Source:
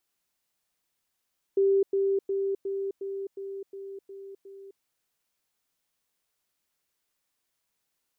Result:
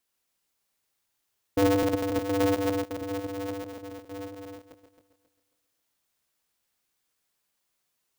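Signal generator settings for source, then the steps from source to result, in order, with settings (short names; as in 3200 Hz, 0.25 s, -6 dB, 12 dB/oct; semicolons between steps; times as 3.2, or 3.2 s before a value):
level ladder 392 Hz -19 dBFS, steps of -3 dB, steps 9, 0.26 s 0.10 s
regenerating reverse delay 0.135 s, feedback 56%, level -4 dB; polarity switched at an audio rate 100 Hz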